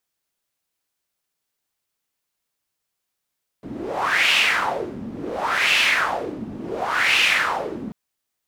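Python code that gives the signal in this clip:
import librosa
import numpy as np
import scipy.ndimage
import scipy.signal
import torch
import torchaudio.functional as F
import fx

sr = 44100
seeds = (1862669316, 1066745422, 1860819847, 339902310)

y = fx.wind(sr, seeds[0], length_s=4.29, low_hz=230.0, high_hz=2700.0, q=3.9, gusts=3, swing_db=15.0)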